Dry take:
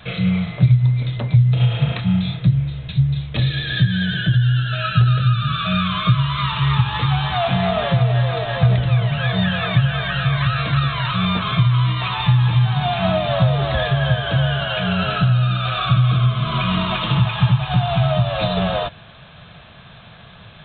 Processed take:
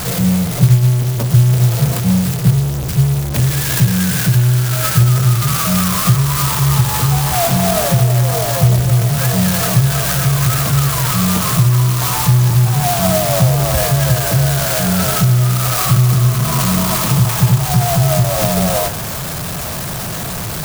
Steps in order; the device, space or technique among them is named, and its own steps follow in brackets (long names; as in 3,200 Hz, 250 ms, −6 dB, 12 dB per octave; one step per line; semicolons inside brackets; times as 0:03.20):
early CD player with a faulty converter (converter with a step at zero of −19.5 dBFS; converter with an unsteady clock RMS 0.13 ms)
level +2 dB